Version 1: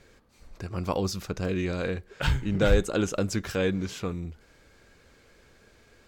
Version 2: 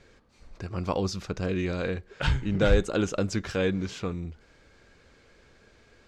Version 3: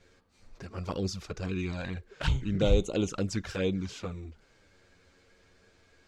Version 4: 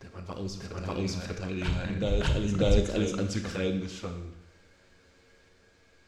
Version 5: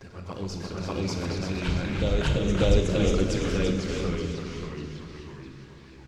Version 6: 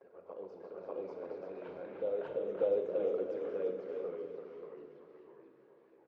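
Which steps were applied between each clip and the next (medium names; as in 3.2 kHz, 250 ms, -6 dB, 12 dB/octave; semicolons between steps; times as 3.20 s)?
low-pass 6.8 kHz 12 dB/octave
treble shelf 5.4 kHz +5 dB; touch-sensitive flanger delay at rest 12 ms, full sweep at -21.5 dBFS; trim -2 dB
reverse echo 593 ms -4.5 dB; Schroeder reverb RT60 0.83 s, combs from 27 ms, DRR 7 dB
on a send: feedback delay 339 ms, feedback 39%, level -6.5 dB; on the sum: ever faster or slower copies 92 ms, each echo -2 st, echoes 3, each echo -6 dB; trim +1.5 dB
ladder band-pass 560 Hz, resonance 55%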